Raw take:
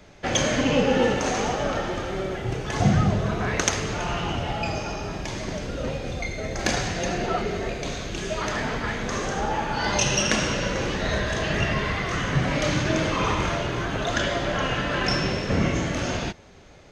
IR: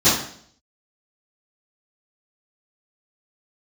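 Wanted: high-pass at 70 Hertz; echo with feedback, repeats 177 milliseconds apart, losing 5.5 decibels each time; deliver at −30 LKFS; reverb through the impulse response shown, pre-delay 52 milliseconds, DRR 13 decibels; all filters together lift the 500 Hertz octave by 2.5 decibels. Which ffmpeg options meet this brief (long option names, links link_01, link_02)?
-filter_complex "[0:a]highpass=70,equalizer=frequency=500:width_type=o:gain=3,aecho=1:1:177|354|531|708|885|1062|1239:0.531|0.281|0.149|0.079|0.0419|0.0222|0.0118,asplit=2[link_01][link_02];[1:a]atrim=start_sample=2205,adelay=52[link_03];[link_02][link_03]afir=irnorm=-1:irlink=0,volume=-34dB[link_04];[link_01][link_04]amix=inputs=2:normalize=0,volume=-7dB"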